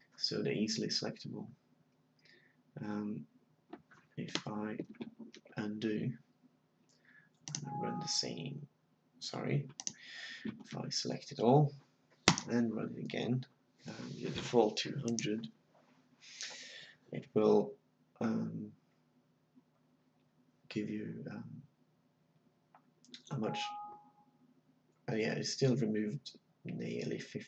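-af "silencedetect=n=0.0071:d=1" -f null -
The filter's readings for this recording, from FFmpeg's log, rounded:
silence_start: 1.45
silence_end: 2.76 | silence_duration: 1.31
silence_start: 6.15
silence_end: 7.48 | silence_duration: 1.33
silence_start: 18.68
silence_end: 20.71 | silence_duration: 2.03
silence_start: 21.59
silence_end: 23.14 | silence_duration: 1.55
silence_start: 23.92
silence_end: 25.08 | silence_duration: 1.16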